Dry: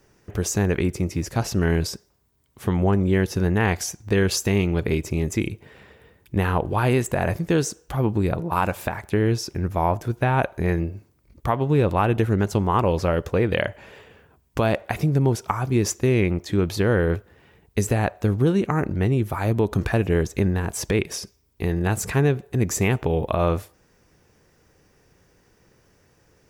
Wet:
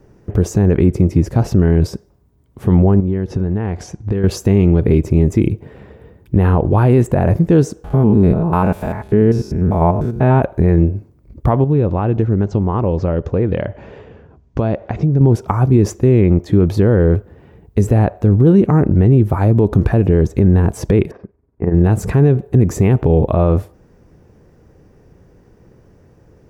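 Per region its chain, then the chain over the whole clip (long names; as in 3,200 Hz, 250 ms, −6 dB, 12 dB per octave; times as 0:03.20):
0:03.00–0:04.24: high-frequency loss of the air 68 metres + downward compressor 8 to 1, threshold −26 dBFS
0:07.84–0:10.42: spectrum averaged block by block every 100 ms + comb filter 4.7 ms, depth 37%
0:11.64–0:15.21: downward compressor 1.5 to 1, threshold −36 dBFS + Butterworth low-pass 7,000 Hz 48 dB per octave
0:21.11–0:21.74: low-pass filter 1,900 Hz 24 dB per octave + low-shelf EQ 110 Hz −10 dB + amplitude modulation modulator 21 Hz, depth 45%
whole clip: tilt shelving filter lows +9.5 dB, about 1,100 Hz; boost into a limiter +5.5 dB; level −1 dB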